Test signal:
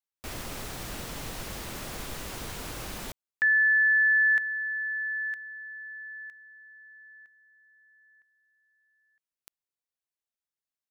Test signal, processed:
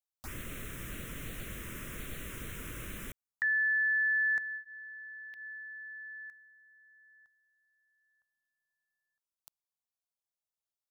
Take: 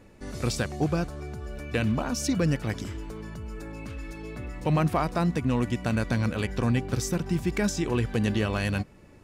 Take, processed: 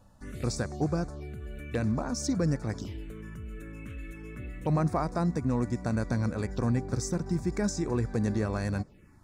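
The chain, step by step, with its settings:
phaser swept by the level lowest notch 340 Hz, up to 3,000 Hz, full sweep at −26 dBFS
level −2.5 dB

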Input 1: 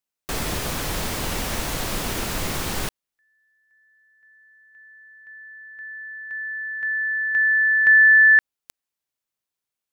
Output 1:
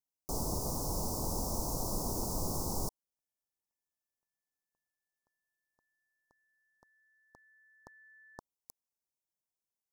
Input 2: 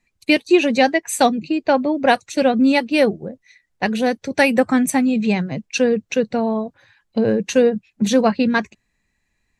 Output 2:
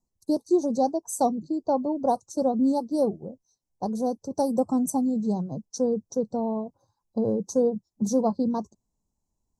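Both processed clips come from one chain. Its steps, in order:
elliptic band-stop filter 980–5,300 Hz, stop band 60 dB
level −7 dB

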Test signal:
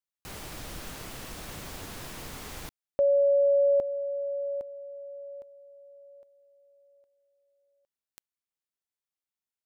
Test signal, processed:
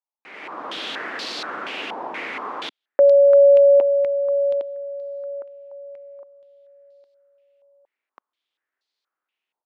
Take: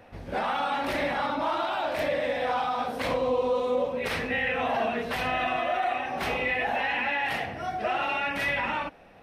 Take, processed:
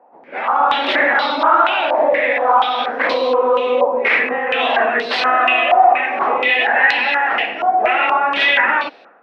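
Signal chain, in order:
high-pass filter 270 Hz 24 dB per octave
automatic gain control gain up to 14 dB
low-pass on a step sequencer 4.2 Hz 890–4,300 Hz
level −4 dB

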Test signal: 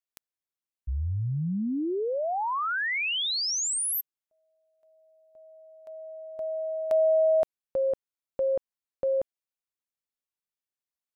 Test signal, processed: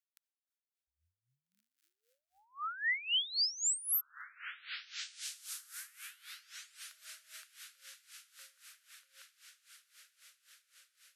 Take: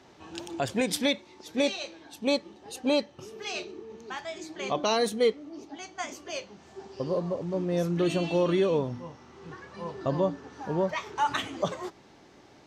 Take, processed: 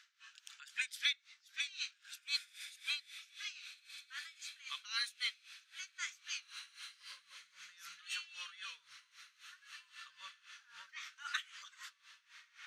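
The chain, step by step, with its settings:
elliptic high-pass filter 1,400 Hz, stop band 50 dB
on a send: feedback delay with all-pass diffusion 1,753 ms, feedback 50%, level −11.5 dB
on the sum: tremolo with a sine in dB 3.8 Hz, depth 19 dB

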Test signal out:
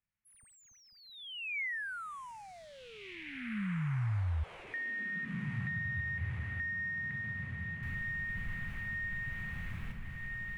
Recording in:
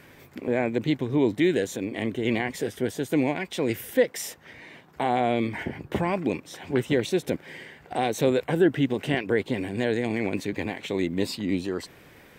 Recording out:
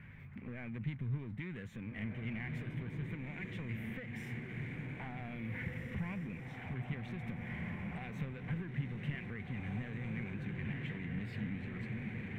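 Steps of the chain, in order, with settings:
on a send: feedback delay with all-pass diffusion 1,851 ms, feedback 42%, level −4.5 dB
on the sum: downward compressor, threshold −25 dBFS
power curve on the samples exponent 0.7
drawn EQ curve 120 Hz 0 dB, 210 Hz −4 dB, 300 Hz −21 dB, 620 Hz −21 dB, 2,200 Hz −5 dB, 4,900 Hz −28 dB
one half of a high-frequency compander decoder only
level −5.5 dB

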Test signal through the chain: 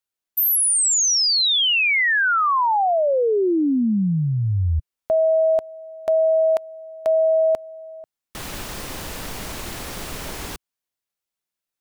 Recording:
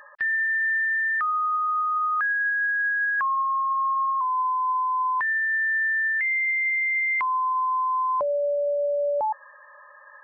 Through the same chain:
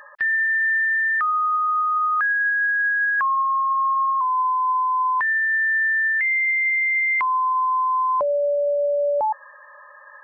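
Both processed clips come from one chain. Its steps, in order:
parametric band 130 Hz −2.5 dB 0.79 octaves
level +3.5 dB

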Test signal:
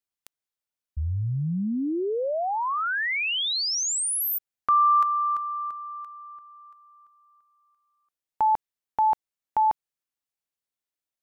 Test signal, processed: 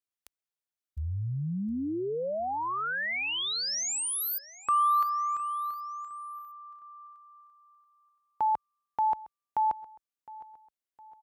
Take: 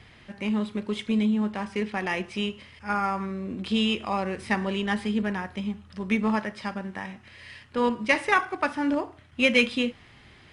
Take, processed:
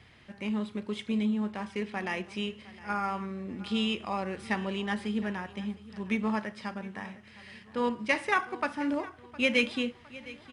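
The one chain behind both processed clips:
high-pass filter 43 Hz 12 dB per octave
on a send: repeating echo 711 ms, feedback 44%, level −19 dB
on the sum: level −5 dB

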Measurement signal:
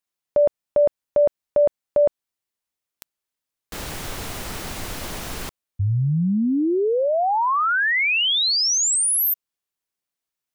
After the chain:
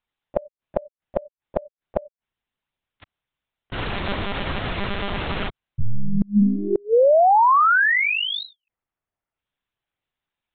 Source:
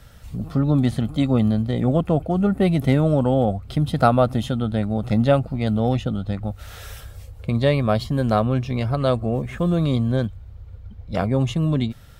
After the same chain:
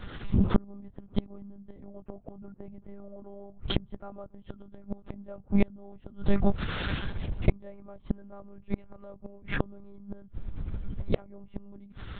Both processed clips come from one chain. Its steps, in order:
treble cut that deepens with the level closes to 1,300 Hz, closed at −17 dBFS
one-pitch LPC vocoder at 8 kHz 200 Hz
gate with flip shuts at −15 dBFS, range −32 dB
level +6 dB

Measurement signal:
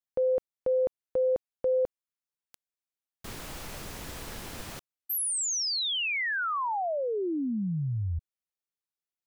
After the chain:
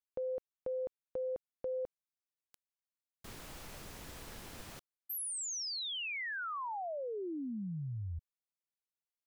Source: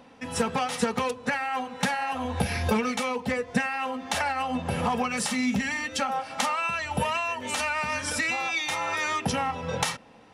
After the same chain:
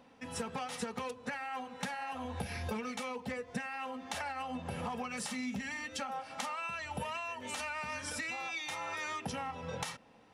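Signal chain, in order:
downward compressor 2 to 1, threshold −29 dBFS
level −8.5 dB

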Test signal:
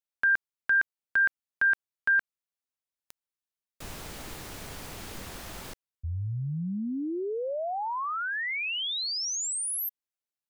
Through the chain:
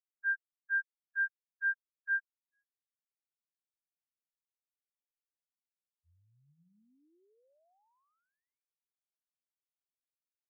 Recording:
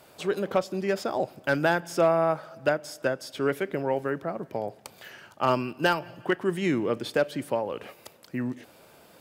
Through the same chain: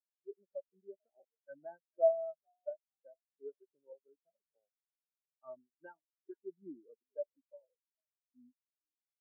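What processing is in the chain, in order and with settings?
dead-zone distortion −47.5 dBFS
low-pass that shuts in the quiet parts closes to 450 Hz, open at −22 dBFS
on a send: echo with shifted repeats 442 ms, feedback 35%, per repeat +62 Hz, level −12.5 dB
on the sum: every bin expanded away from the loudest bin 4 to 1
level −7.5 dB

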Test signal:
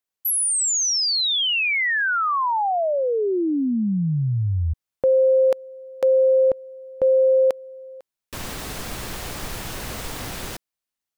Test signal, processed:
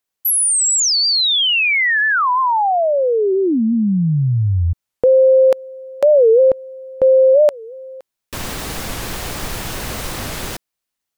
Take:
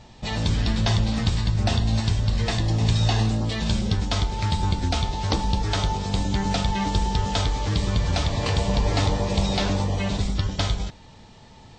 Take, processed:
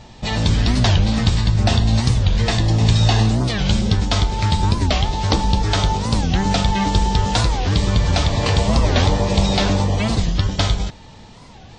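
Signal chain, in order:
wow of a warped record 45 rpm, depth 250 cents
level +6 dB

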